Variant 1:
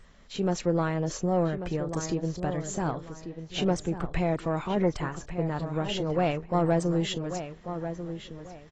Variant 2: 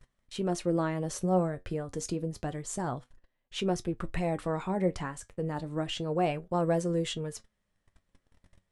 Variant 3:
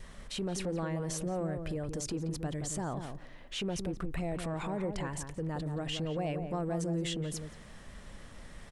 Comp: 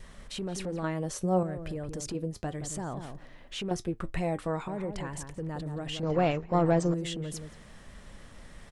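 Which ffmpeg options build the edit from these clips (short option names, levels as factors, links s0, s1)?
-filter_complex "[1:a]asplit=3[s0][s1][s2];[2:a]asplit=5[s3][s4][s5][s6][s7];[s3]atrim=end=0.842[s8];[s0]atrim=start=0.838:end=1.432[s9];[s4]atrim=start=1.428:end=2.152[s10];[s1]atrim=start=2.148:end=2.592[s11];[s5]atrim=start=2.588:end=3.712[s12];[s2]atrim=start=3.708:end=4.682[s13];[s6]atrim=start=4.678:end=6.032[s14];[0:a]atrim=start=6.028:end=6.942[s15];[s7]atrim=start=6.938[s16];[s8][s9]acrossfade=d=0.004:c1=hsin:c2=hsin[s17];[s17][s10]acrossfade=d=0.004:c1=hsin:c2=hsin[s18];[s18][s11]acrossfade=d=0.004:c1=hsin:c2=hsin[s19];[s19][s12]acrossfade=d=0.004:c1=hsin:c2=hsin[s20];[s20][s13]acrossfade=d=0.004:c1=hsin:c2=hsin[s21];[s21][s14]acrossfade=d=0.004:c1=hsin:c2=hsin[s22];[s22][s15]acrossfade=d=0.004:c1=hsin:c2=hsin[s23];[s23][s16]acrossfade=d=0.004:c1=hsin:c2=hsin"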